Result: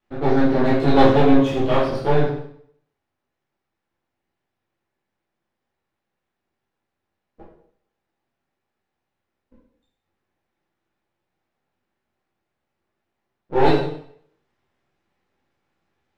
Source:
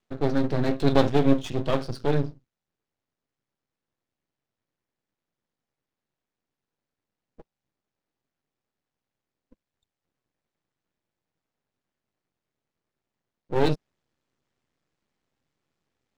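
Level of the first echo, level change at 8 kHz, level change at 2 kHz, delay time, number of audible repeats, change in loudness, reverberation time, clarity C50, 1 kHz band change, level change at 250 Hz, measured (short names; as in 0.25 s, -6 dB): none, n/a, +8.0 dB, none, none, +6.5 dB, 0.60 s, 2.5 dB, +10.5 dB, +6.5 dB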